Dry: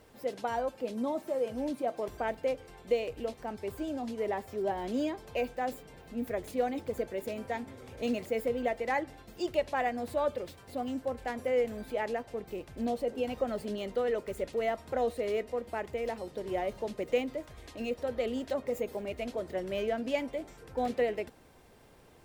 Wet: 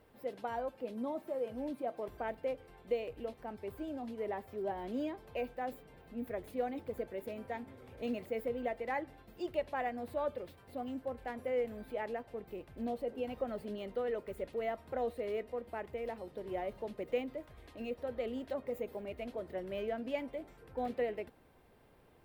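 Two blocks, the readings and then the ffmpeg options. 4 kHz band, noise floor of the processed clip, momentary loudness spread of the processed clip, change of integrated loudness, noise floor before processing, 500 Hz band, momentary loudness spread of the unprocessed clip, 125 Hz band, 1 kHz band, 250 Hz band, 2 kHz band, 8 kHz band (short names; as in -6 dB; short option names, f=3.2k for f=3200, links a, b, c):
-9.0 dB, -62 dBFS, 8 LU, -5.5 dB, -56 dBFS, -5.5 dB, 8 LU, -5.5 dB, -5.5 dB, -5.5 dB, -6.5 dB, under -10 dB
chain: -af "equalizer=f=6.6k:w=0.98:g=-11,volume=-5.5dB"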